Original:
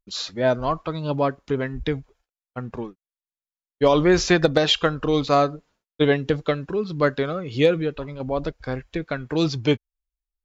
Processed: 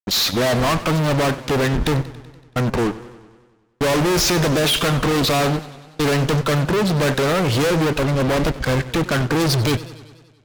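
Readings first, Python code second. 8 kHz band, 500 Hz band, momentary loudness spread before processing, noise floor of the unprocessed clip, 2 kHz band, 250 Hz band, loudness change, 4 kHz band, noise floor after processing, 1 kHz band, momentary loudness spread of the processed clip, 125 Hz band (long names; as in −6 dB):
can't be measured, +1.0 dB, 14 LU, below −85 dBFS, +5.5 dB, +4.0 dB, +3.5 dB, +6.0 dB, −54 dBFS, +4.0 dB, 7 LU, +8.5 dB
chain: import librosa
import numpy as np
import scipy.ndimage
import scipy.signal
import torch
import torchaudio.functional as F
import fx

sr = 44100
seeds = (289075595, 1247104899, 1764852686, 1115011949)

y = fx.fuzz(x, sr, gain_db=41.0, gate_db=-47.0)
y = fx.echo_warbled(y, sr, ms=95, feedback_pct=64, rate_hz=2.8, cents=141, wet_db=-16.5)
y = F.gain(torch.from_numpy(y), -3.5).numpy()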